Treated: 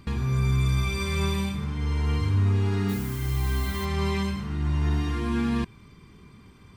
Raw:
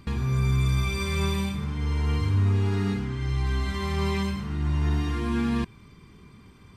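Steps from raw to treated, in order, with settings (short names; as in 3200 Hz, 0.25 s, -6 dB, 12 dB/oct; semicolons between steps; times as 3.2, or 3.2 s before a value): 2.88–3.84 added noise blue -43 dBFS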